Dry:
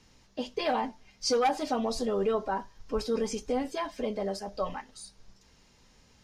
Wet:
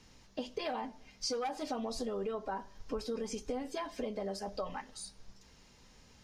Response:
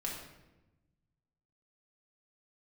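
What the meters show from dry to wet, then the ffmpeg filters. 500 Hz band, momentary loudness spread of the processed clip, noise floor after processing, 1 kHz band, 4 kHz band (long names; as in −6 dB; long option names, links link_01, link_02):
−8.0 dB, 7 LU, −61 dBFS, −9.0 dB, −6.0 dB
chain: -filter_complex "[0:a]acompressor=threshold=-35dB:ratio=6,asplit=2[link_01][link_02];[1:a]atrim=start_sample=2205[link_03];[link_02][link_03]afir=irnorm=-1:irlink=0,volume=-22dB[link_04];[link_01][link_04]amix=inputs=2:normalize=0"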